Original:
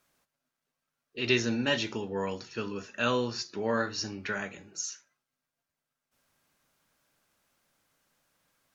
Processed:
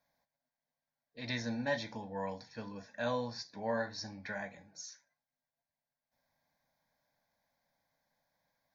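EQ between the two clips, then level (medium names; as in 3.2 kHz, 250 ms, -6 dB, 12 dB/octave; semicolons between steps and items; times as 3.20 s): peaking EQ 490 Hz +8.5 dB 3 oct; static phaser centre 1.9 kHz, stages 8; -8.0 dB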